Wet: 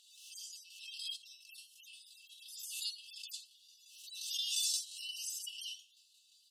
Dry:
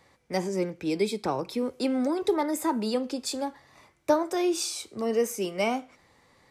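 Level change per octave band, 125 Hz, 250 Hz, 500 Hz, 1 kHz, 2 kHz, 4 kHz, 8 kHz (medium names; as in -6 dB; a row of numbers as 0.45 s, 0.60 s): under -40 dB, under -40 dB, under -40 dB, under -40 dB, -15.0 dB, -0.5 dB, -3.0 dB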